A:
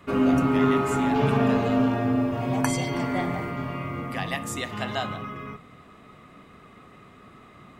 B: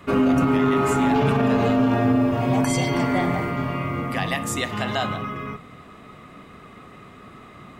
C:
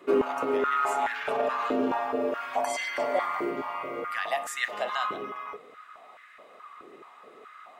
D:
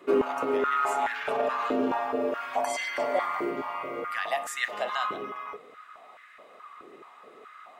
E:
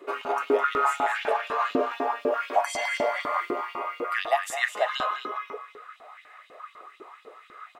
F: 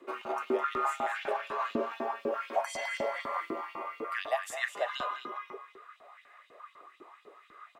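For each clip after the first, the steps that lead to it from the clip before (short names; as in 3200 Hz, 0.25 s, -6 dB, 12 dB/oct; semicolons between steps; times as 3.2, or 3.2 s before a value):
limiter -16.5 dBFS, peak gain reduction 9.5 dB; gain +5.5 dB
stepped high-pass 4.7 Hz 370–1700 Hz; gain -8.5 dB
nothing audible
echo 0.208 s -9.5 dB; LFO high-pass saw up 4 Hz 270–4100 Hz
frequency shift -30 Hz; gain -7 dB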